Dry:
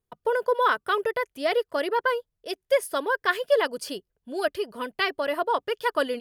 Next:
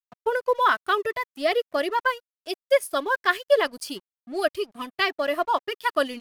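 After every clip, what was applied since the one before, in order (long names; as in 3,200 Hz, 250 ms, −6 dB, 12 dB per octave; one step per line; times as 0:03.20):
noise reduction from a noise print of the clip's start 13 dB
dead-zone distortion −49 dBFS
level +2.5 dB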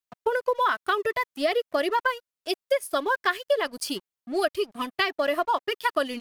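downward compressor 5 to 1, threshold −24 dBFS, peak gain reduction 10.5 dB
level +3.5 dB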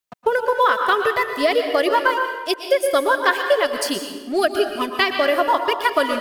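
dense smooth reverb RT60 1.2 s, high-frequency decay 0.7×, pre-delay 105 ms, DRR 5 dB
level +6 dB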